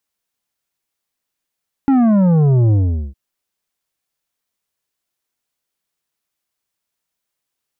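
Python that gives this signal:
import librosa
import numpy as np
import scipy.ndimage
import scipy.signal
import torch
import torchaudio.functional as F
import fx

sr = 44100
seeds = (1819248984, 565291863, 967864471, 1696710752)

y = fx.sub_drop(sr, level_db=-10.5, start_hz=280.0, length_s=1.26, drive_db=9, fade_s=0.42, end_hz=65.0)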